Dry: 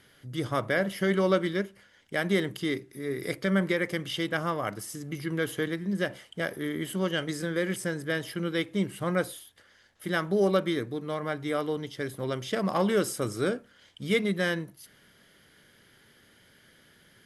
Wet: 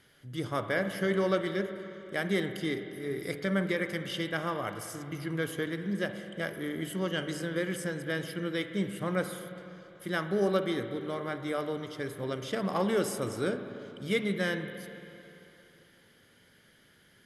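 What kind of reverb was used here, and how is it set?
spring reverb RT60 3.1 s, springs 44/49/56 ms, chirp 35 ms, DRR 8 dB
level −3.5 dB

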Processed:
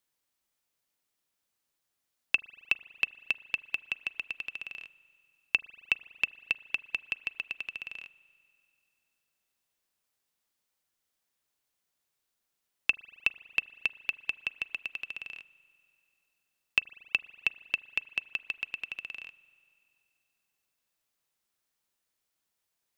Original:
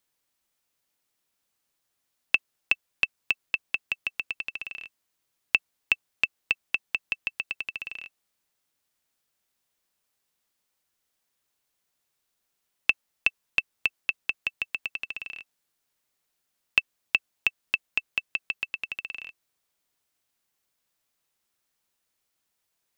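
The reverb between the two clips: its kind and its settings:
spring reverb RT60 2.5 s, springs 38 ms, chirp 25 ms, DRR 19 dB
level −4 dB

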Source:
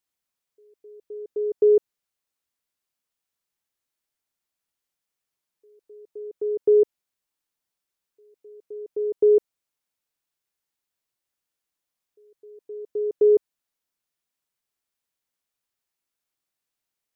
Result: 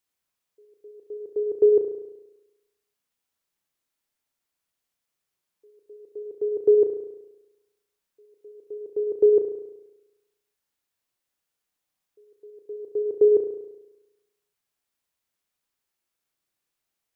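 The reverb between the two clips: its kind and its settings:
spring reverb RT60 1 s, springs 34 ms, chirp 55 ms, DRR 5 dB
level +1.5 dB

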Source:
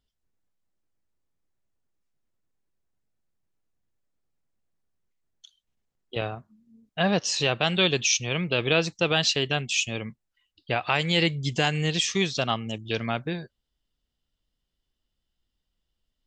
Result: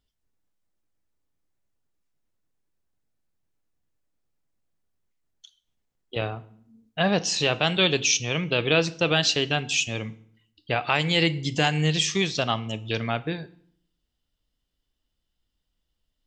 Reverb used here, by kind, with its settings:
feedback delay network reverb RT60 0.61 s, low-frequency decay 1.3×, high-frequency decay 0.85×, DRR 13.5 dB
level +1 dB

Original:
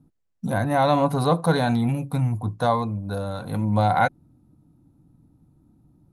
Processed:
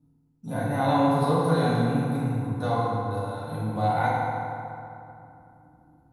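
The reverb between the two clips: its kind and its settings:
feedback delay network reverb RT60 2.8 s, high-frequency decay 0.55×, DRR −8.5 dB
level −12 dB

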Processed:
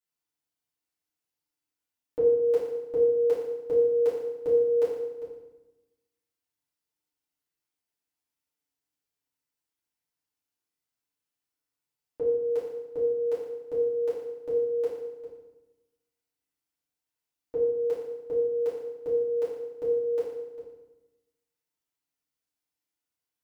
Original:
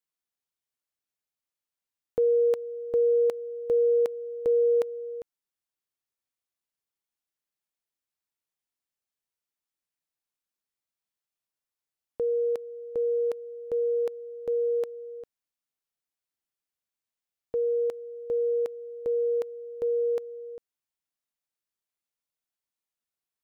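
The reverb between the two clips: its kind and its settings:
feedback delay network reverb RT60 1 s, low-frequency decay 1.35×, high-frequency decay 0.85×, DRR −9.5 dB
level −8 dB

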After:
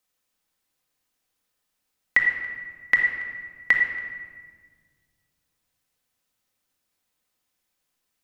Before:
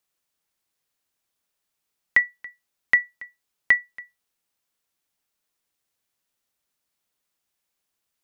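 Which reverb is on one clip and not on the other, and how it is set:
rectangular room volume 2,000 cubic metres, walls mixed, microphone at 2 metres

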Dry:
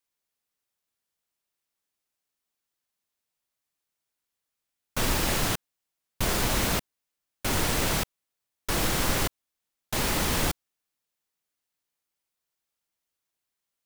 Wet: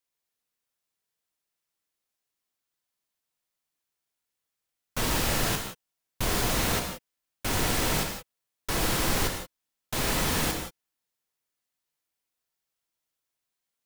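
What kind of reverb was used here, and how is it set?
reverb whose tail is shaped and stops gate 200 ms flat, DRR 3 dB
level −2 dB

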